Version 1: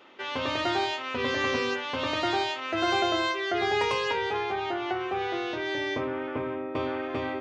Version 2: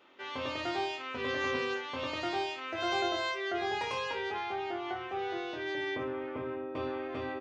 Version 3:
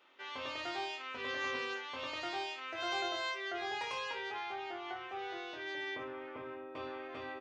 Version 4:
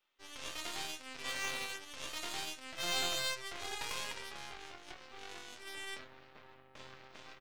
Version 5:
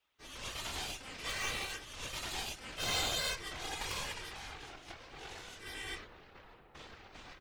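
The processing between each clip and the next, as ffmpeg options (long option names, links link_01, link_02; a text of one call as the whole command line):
ffmpeg -i in.wav -af "aecho=1:1:23|59:0.501|0.316,volume=-8.5dB" out.wav
ffmpeg -i in.wav -af "lowshelf=frequency=460:gain=-11,volume=-2.5dB" out.wav
ffmpeg -i in.wav -af "crystalizer=i=4.5:c=0,aeval=exprs='0.119*(cos(1*acos(clip(val(0)/0.119,-1,1)))-cos(1*PI/2))+0.0168*(cos(5*acos(clip(val(0)/0.119,-1,1)))-cos(5*PI/2))+0.0237*(cos(6*acos(clip(val(0)/0.119,-1,1)))-cos(6*PI/2))+0.0266*(cos(7*acos(clip(val(0)/0.119,-1,1)))-cos(7*PI/2))':channel_layout=same,volume=-4.5dB" out.wav
ffmpeg -i in.wav -af "afftfilt=real='hypot(re,im)*cos(2*PI*random(0))':imag='hypot(re,im)*sin(2*PI*random(1))':win_size=512:overlap=0.75,volume=7dB" out.wav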